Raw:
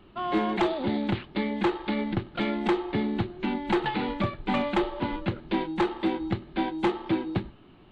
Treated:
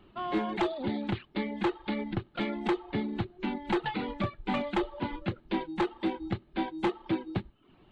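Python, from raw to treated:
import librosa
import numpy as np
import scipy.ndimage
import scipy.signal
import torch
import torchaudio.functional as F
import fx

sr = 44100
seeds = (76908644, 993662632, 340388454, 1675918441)

y = fx.dereverb_blind(x, sr, rt60_s=0.56)
y = y * 10.0 ** (-3.5 / 20.0)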